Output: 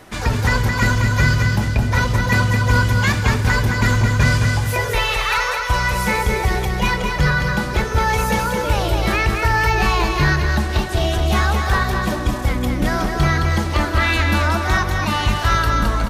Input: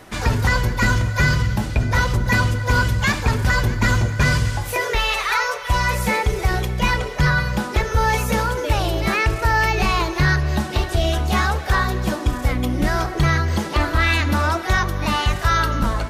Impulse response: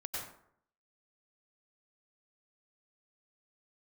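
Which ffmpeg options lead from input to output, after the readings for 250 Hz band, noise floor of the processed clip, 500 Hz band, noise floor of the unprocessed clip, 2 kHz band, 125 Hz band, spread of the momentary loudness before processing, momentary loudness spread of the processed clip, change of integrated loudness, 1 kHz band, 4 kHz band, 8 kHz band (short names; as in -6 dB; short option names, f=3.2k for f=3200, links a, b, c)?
+2.0 dB, -24 dBFS, +1.5 dB, -29 dBFS, +1.5 dB, +2.0 dB, 4 LU, 4 LU, +1.5 dB, +1.5 dB, +1.5 dB, +1.5 dB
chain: -af "aecho=1:1:216|432|648|864|1080:0.596|0.22|0.0815|0.0302|0.0112"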